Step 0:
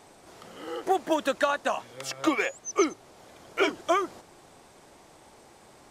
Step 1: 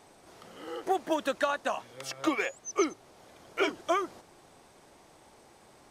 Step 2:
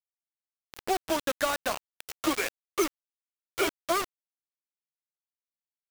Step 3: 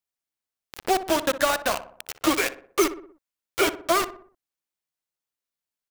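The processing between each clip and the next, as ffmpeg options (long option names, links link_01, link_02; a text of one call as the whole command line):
ffmpeg -i in.wav -af "bandreject=frequency=7300:width=19,volume=-3.5dB" out.wav
ffmpeg -i in.wav -af "acrusher=bits=4:mix=0:aa=0.000001" out.wav
ffmpeg -i in.wav -filter_complex "[0:a]asplit=2[link_01][link_02];[link_02]adelay=61,lowpass=frequency=1600:poles=1,volume=-12dB,asplit=2[link_03][link_04];[link_04]adelay=61,lowpass=frequency=1600:poles=1,volume=0.52,asplit=2[link_05][link_06];[link_06]adelay=61,lowpass=frequency=1600:poles=1,volume=0.52,asplit=2[link_07][link_08];[link_08]adelay=61,lowpass=frequency=1600:poles=1,volume=0.52,asplit=2[link_09][link_10];[link_10]adelay=61,lowpass=frequency=1600:poles=1,volume=0.52[link_11];[link_01][link_03][link_05][link_07][link_09][link_11]amix=inputs=6:normalize=0,volume=5.5dB" out.wav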